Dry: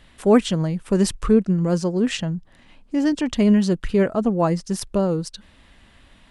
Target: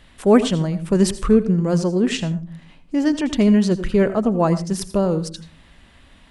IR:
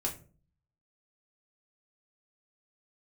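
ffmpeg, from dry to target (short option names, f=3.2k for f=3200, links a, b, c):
-filter_complex "[0:a]asplit=2[a][b];[1:a]atrim=start_sample=2205,adelay=80[c];[b][c]afir=irnorm=-1:irlink=0,volume=-16dB[d];[a][d]amix=inputs=2:normalize=0,volume=1.5dB"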